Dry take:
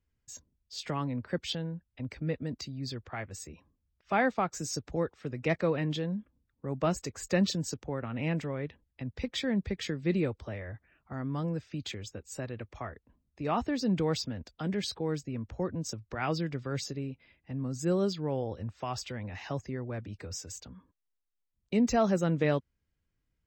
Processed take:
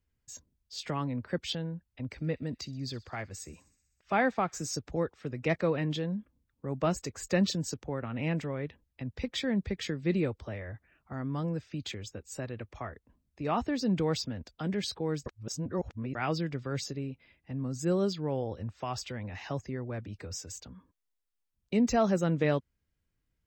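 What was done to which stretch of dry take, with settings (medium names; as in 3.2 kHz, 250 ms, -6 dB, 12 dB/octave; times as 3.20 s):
2.11–4.73 s: feedback echo behind a high-pass 63 ms, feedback 73%, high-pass 2.9 kHz, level -20 dB
15.26–16.15 s: reverse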